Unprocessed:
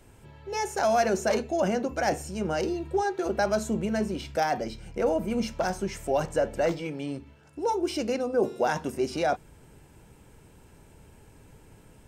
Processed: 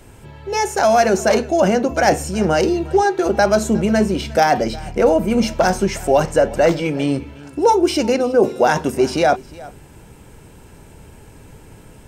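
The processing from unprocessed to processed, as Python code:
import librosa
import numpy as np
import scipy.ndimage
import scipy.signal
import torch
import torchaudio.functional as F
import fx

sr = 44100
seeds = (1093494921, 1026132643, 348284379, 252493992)

p1 = fx.rider(x, sr, range_db=10, speed_s=0.5)
p2 = x + F.gain(torch.from_numpy(p1), 1.5).numpy()
p3 = p2 + 10.0 ** (-21.0 / 20.0) * np.pad(p2, (int(359 * sr / 1000.0), 0))[:len(p2)]
y = F.gain(torch.from_numpy(p3), 4.5).numpy()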